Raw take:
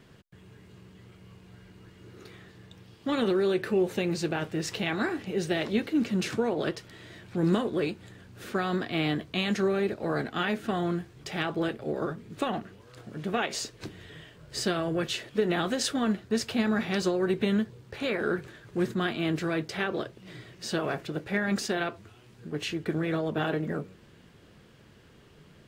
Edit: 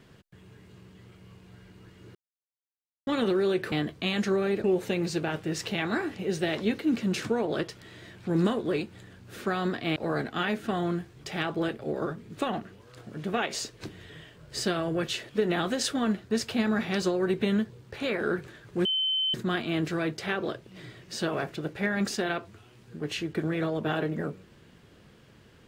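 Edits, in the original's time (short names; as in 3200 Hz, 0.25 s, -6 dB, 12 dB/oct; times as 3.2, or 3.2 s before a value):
2.15–3.07 mute
9.04–9.96 move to 3.72
18.85 add tone 3070 Hz -24 dBFS 0.49 s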